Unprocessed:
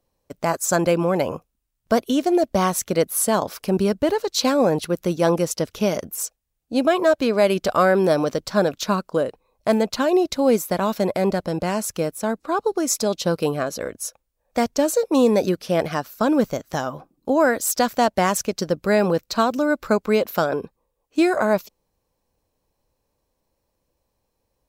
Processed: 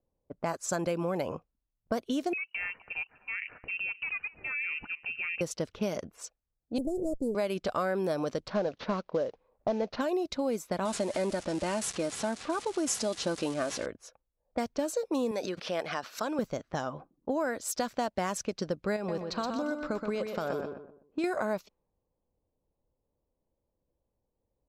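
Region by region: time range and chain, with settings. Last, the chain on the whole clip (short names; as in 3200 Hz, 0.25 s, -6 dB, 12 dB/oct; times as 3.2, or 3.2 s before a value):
2.33–5.41 compressor 4:1, threshold -25 dBFS + echo 0.253 s -19.5 dB + inverted band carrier 2900 Hz
6.78–7.35 minimum comb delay 0.41 ms + Chebyshev band-stop 510–7900 Hz, order 3
8.48–10.01 CVSD 32 kbps + bell 550 Hz +6 dB 0.93 oct
10.85–13.86 switching spikes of -24.5 dBFS + comb 3.3 ms, depth 46% + careless resampling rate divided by 2×, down none, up filtered
15.31–16.39 HPF 690 Hz 6 dB/oct + backwards sustainer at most 73 dB/s
18.96–21.24 compressor 5:1, threshold -20 dBFS + feedback echo 0.124 s, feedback 35%, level -6.5 dB
whole clip: compressor 4:1, threshold -21 dBFS; low-pass opened by the level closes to 680 Hz, open at -20 dBFS; gain -6.5 dB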